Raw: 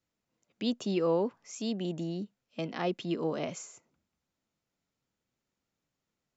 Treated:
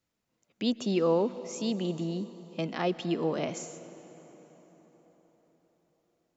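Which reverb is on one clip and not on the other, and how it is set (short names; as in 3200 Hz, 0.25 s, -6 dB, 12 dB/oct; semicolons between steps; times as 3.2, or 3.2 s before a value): plate-style reverb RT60 4.9 s, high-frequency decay 0.65×, pre-delay 0.11 s, DRR 14 dB; gain +2.5 dB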